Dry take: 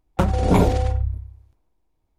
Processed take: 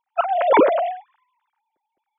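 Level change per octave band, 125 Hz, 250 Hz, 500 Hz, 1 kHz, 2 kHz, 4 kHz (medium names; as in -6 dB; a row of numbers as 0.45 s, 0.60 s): under -30 dB, -3.0 dB, +6.5 dB, +7.0 dB, +7.0 dB, -1.0 dB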